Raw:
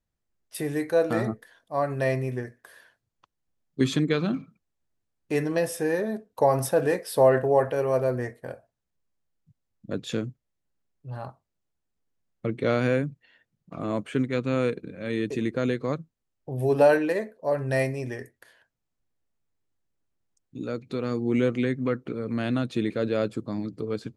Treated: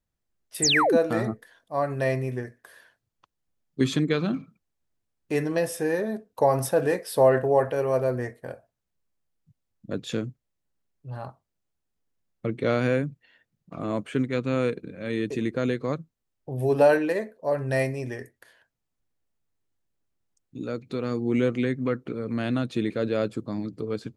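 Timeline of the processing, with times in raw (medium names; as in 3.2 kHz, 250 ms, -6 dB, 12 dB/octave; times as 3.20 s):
0.62–0.97 s: painted sound fall 210–9000 Hz -21 dBFS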